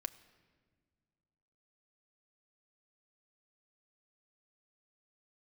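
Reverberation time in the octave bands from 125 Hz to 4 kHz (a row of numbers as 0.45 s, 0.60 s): 2.6 s, 2.4 s, 1.8 s, 1.4 s, 1.4 s, 1.1 s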